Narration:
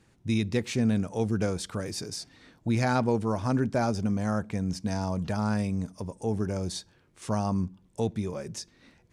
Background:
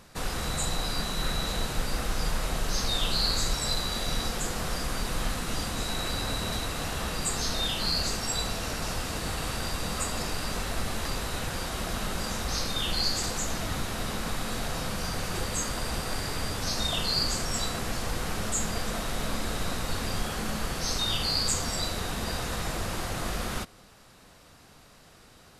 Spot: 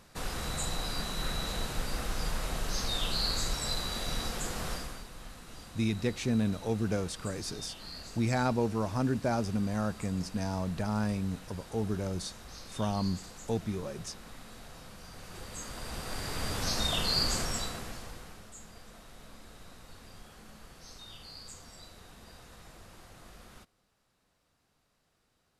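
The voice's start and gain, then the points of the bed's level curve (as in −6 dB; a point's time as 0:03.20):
5.50 s, −3.5 dB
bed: 0:04.72 −4.5 dB
0:05.09 −17 dB
0:15.07 −17 dB
0:16.57 −1.5 dB
0:17.41 −1.5 dB
0:18.49 −20.5 dB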